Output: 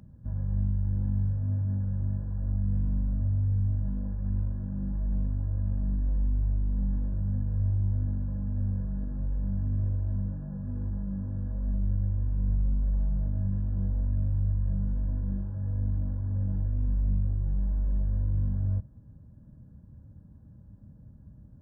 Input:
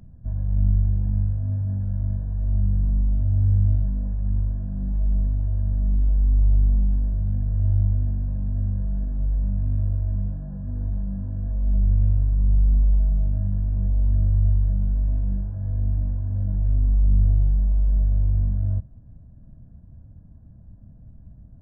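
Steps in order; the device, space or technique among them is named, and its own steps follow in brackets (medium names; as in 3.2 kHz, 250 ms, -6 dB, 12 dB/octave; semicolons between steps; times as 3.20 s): PA system with an anti-feedback notch (high-pass 110 Hz 6 dB/octave; Butterworth band-stop 690 Hz, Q 5.4; peak limiter -20.5 dBFS, peak gain reduction 4.5 dB)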